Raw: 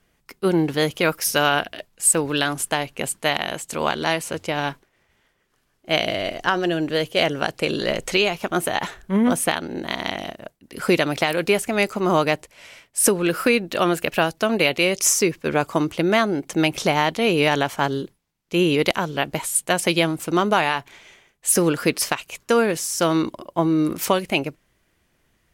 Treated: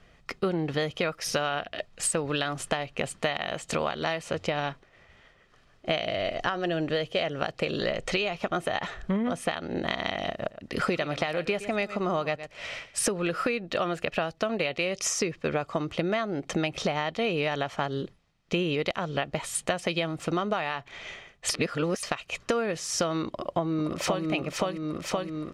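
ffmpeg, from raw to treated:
ffmpeg -i in.wav -filter_complex "[0:a]asettb=1/sr,asplit=3[link_01][link_02][link_03];[link_01]atrim=end=10.304[link_04];[link_02]atrim=start=10.3:end=12.99,asetpts=PTS-STARTPTS,afade=type=in:duration=0.004:curve=qsin,afade=type=out:start_time=2.686:duration=0.004:curve=qsin,aecho=1:1:116:0.158,atrim=end_sample=118629[link_05];[link_03]atrim=start=12.986[link_06];[link_04][link_05]acrossfade=duration=0.004:curve1=hsin:curve2=qsin[link_07];[link_07][link_06]acrossfade=duration=0.004:curve1=qsin:curve2=hsin,asplit=2[link_08][link_09];[link_09]afade=type=in:start_time=23.26:duration=0.01,afade=type=out:start_time=24.26:duration=0.01,aecho=0:1:520|1040|1560|2080|2600:0.841395|0.336558|0.134623|0.0538493|0.0215397[link_10];[link_08][link_10]amix=inputs=2:normalize=0,asplit=3[link_11][link_12][link_13];[link_11]atrim=end=21.492[link_14];[link_12]atrim=start=21.488:end=22.032,asetpts=PTS-STARTPTS,areverse[link_15];[link_13]atrim=start=22.028[link_16];[link_14][link_15]acrossfade=duration=0.004:curve1=hsin:curve2=hsin[link_17];[link_17][link_16]acrossfade=duration=0.004:curve1=hsin:curve2=hsin,lowpass=4700,aecho=1:1:1.6:0.33,acompressor=threshold=-33dB:ratio=8,volume=7.5dB" out.wav

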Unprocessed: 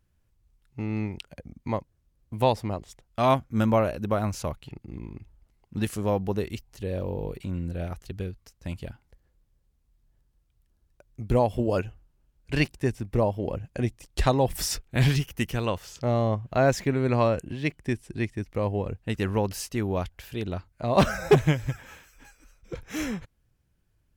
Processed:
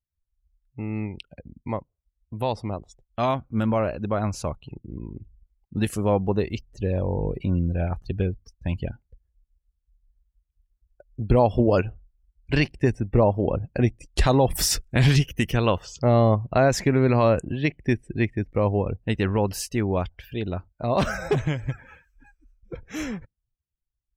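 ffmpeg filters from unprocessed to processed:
ffmpeg -i in.wav -filter_complex "[0:a]asettb=1/sr,asplit=3[link_01][link_02][link_03];[link_01]atrim=end=6.694[link_04];[link_02]atrim=start=6.69:end=8.88,asetpts=PTS-STARTPTS,afade=type=in:duration=0.004:curve=qsin,afade=type=out:start_time=2.186:duration=0.004:curve=qsin,aphaser=in_gain=1:out_gain=1:delay=1.3:decay=0.25:speed=1.3:type=sinusoidal[link_05];[link_03]atrim=start=8.876[link_06];[link_04][link_05]acrossfade=duration=0.004:curve1=hsin:curve2=qsin[link_07];[link_07][link_06]acrossfade=duration=0.004:curve1=qsin:curve2=hsin,afftdn=noise_reduction=26:noise_floor=-48,alimiter=limit=-15dB:level=0:latency=1:release=59,dynaudnorm=framelen=880:gausssize=13:maxgain=6.5dB" out.wav

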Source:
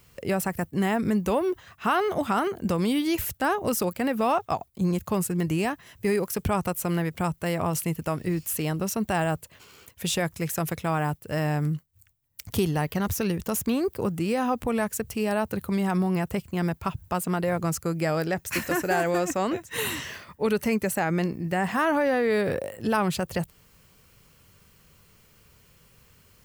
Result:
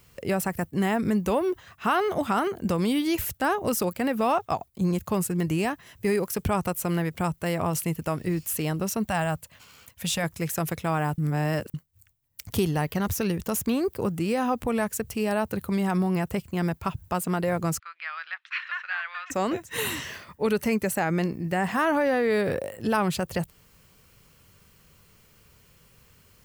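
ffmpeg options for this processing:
ffmpeg -i in.wav -filter_complex "[0:a]asettb=1/sr,asplit=3[link_01][link_02][link_03];[link_01]atrim=end=9.054[link_04];[link_02]atrim=start=9.05:end=10.24,asetpts=PTS-STARTPTS,afade=type=in:duration=0.004:curve=qsin,afade=type=out:start_time=1.186:duration=0.004:curve=qsin,equalizer=frequency=380:width_type=o:width=0.45:gain=-14[link_05];[link_03]atrim=start=10.236[link_06];[link_04][link_05]acrossfade=duration=0.004:curve1=hsin:curve2=qsin[link_07];[link_07][link_06]acrossfade=duration=0.004:curve1=qsin:curve2=hsin,asplit=3[link_08][link_09][link_10];[link_08]afade=type=out:start_time=17.78:duration=0.02[link_11];[link_09]asuperpass=centerf=2100:order=8:qfactor=0.79,afade=type=in:start_time=17.78:duration=0.02,afade=type=out:start_time=19.3:duration=0.02[link_12];[link_10]afade=type=in:start_time=19.3:duration=0.02[link_13];[link_11][link_12][link_13]amix=inputs=3:normalize=0,asplit=3[link_14][link_15][link_16];[link_14]atrim=end=11.182[link_17];[link_15]atrim=start=11.178:end=11.742,asetpts=PTS-STARTPTS,areverse[link_18];[link_16]atrim=start=11.738[link_19];[link_17][link_18]acrossfade=duration=0.004:curve1=hsin:curve2=hsin[link_20];[link_20][link_19]acrossfade=duration=0.004:curve1=hsin:curve2=hsin" out.wav

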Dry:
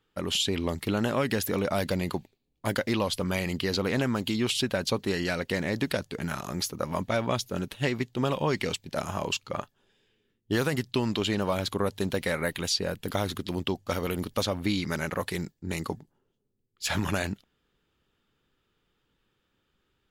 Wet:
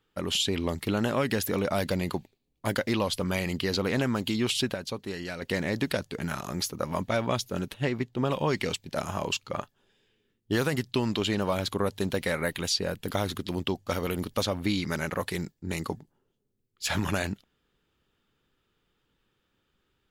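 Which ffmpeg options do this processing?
ffmpeg -i in.wav -filter_complex "[0:a]asettb=1/sr,asplit=3[link_01][link_02][link_03];[link_01]atrim=end=7.744[link_04];[link_02]atrim=start=7.74:end=8.3,asetpts=PTS-STARTPTS,afade=type=in:duration=0.004:curve=qsin,afade=type=out:start_time=0.556:duration=0.004:curve=qsin,highshelf=frequency=2900:gain=-8.5[link_05];[link_03]atrim=start=8.296[link_06];[link_04][link_05]acrossfade=duration=0.004:curve1=hsin:curve2=qsin[link_07];[link_07][link_06]acrossfade=duration=0.004:curve1=qsin:curve2=hsin,asplit=3[link_08][link_09][link_10];[link_08]atrim=end=4.742[link_11];[link_09]atrim=start=4.738:end=5.422,asetpts=PTS-STARTPTS,volume=-7dB[link_12];[link_10]atrim=start=5.418[link_13];[link_11][link_12]acrossfade=duration=0.004:curve1=hsin:curve2=hsin[link_14];[link_14][link_13]acrossfade=duration=0.004:curve1=hsin:curve2=hsin" out.wav

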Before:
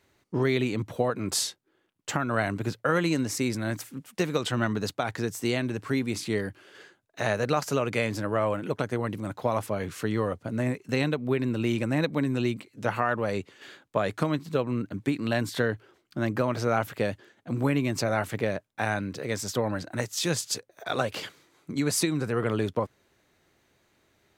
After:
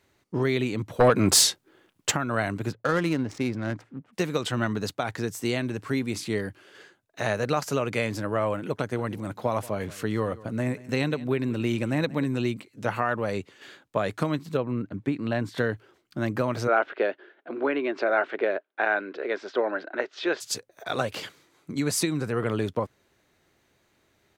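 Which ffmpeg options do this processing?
ffmpeg -i in.wav -filter_complex "[0:a]asplit=3[link_01][link_02][link_03];[link_01]afade=type=out:start_time=0.99:duration=0.02[link_04];[link_02]aeval=exprs='0.266*sin(PI/2*2.24*val(0)/0.266)':channel_layout=same,afade=type=in:start_time=0.99:duration=0.02,afade=type=out:start_time=2.1:duration=0.02[link_05];[link_03]afade=type=in:start_time=2.1:duration=0.02[link_06];[link_04][link_05][link_06]amix=inputs=3:normalize=0,asplit=3[link_07][link_08][link_09];[link_07]afade=type=out:start_time=2.71:duration=0.02[link_10];[link_08]adynamicsmooth=sensitivity=4.5:basefreq=1200,afade=type=in:start_time=2.71:duration=0.02,afade=type=out:start_time=4.12:duration=0.02[link_11];[link_09]afade=type=in:start_time=4.12:duration=0.02[link_12];[link_10][link_11][link_12]amix=inputs=3:normalize=0,asplit=3[link_13][link_14][link_15];[link_13]afade=type=out:start_time=8.91:duration=0.02[link_16];[link_14]aecho=1:1:182:0.106,afade=type=in:start_time=8.91:duration=0.02,afade=type=out:start_time=12.34:duration=0.02[link_17];[link_15]afade=type=in:start_time=12.34:duration=0.02[link_18];[link_16][link_17][link_18]amix=inputs=3:normalize=0,asettb=1/sr,asplit=3[link_19][link_20][link_21];[link_19]atrim=end=14.574[link_22];[link_20]atrim=start=14.57:end=15.58,asetpts=PTS-STARTPTS,afade=type=in:duration=0.004:curve=qsin,afade=type=out:start_time=1.006:duration=0.004:curve=qsin,lowpass=frequency=1900:poles=1[link_23];[link_21]atrim=start=15.576[link_24];[link_22][link_23]acrossfade=duration=0.004:curve1=hsin:curve2=qsin[link_25];[link_25][link_24]acrossfade=duration=0.004:curve1=qsin:curve2=hsin,asplit=3[link_26][link_27][link_28];[link_26]afade=type=out:start_time=16.67:duration=0.02[link_29];[link_27]highpass=frequency=310:width=0.5412,highpass=frequency=310:width=1.3066,equalizer=frequency=380:width_type=q:width=4:gain=8,equalizer=frequency=650:width_type=q:width=4:gain=5,equalizer=frequency=1500:width_type=q:width=4:gain=8,lowpass=frequency=3500:width=0.5412,lowpass=frequency=3500:width=1.3066,afade=type=in:start_time=16.67:duration=0.02,afade=type=out:start_time=20.4:duration=0.02[link_30];[link_28]afade=type=in:start_time=20.4:duration=0.02[link_31];[link_29][link_30][link_31]amix=inputs=3:normalize=0" out.wav

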